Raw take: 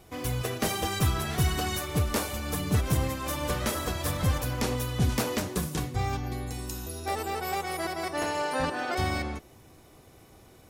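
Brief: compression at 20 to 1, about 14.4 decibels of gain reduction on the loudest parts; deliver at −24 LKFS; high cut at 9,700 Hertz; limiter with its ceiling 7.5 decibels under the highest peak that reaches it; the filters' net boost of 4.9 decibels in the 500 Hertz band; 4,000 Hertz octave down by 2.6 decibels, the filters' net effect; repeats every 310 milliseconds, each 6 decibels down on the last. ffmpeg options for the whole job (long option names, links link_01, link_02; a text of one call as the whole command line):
ffmpeg -i in.wav -af "lowpass=9700,equalizer=frequency=500:width_type=o:gain=6,equalizer=frequency=4000:width_type=o:gain=-3.5,acompressor=threshold=-34dB:ratio=20,alimiter=level_in=6dB:limit=-24dB:level=0:latency=1,volume=-6dB,aecho=1:1:310|620|930|1240|1550|1860:0.501|0.251|0.125|0.0626|0.0313|0.0157,volume=14.5dB" out.wav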